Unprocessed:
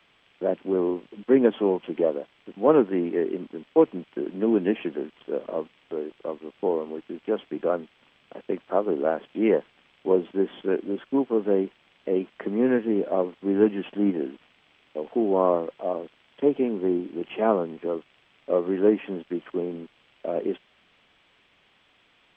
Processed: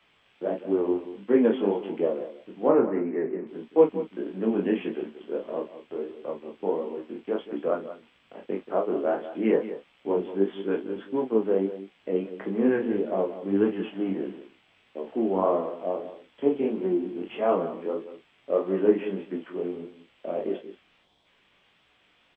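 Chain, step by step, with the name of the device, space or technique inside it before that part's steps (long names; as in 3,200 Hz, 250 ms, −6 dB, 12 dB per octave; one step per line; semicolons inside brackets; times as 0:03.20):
0:02.68–0:03.47: Chebyshev low-pass filter 2,200 Hz, order 4
0:21.02–0:21.25: gain on a spectral selection 1,100–3,100 Hz −11 dB
double-tracked vocal (double-tracking delay 31 ms −6.5 dB; chorus effect 1.6 Hz, delay 16 ms, depth 6.3 ms)
single-tap delay 181 ms −13 dB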